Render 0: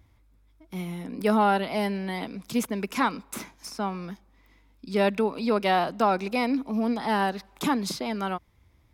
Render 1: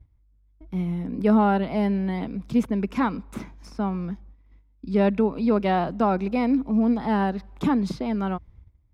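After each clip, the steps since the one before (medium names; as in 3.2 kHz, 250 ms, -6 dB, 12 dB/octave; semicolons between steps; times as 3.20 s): gate -57 dBFS, range -15 dB; RIAA curve playback; trim -1.5 dB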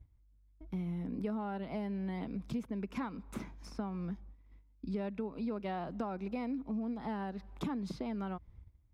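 compression 6:1, threshold -30 dBFS, peak gain reduction 15 dB; trim -5 dB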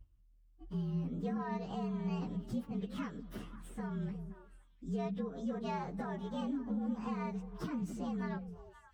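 frequency axis rescaled in octaves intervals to 115%; repeats whose band climbs or falls 175 ms, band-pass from 180 Hz, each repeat 1.4 oct, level -6 dB; trim +1 dB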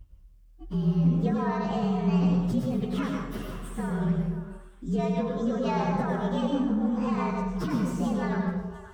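plate-style reverb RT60 0.79 s, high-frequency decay 0.8×, pre-delay 85 ms, DRR 0.5 dB; trim +9 dB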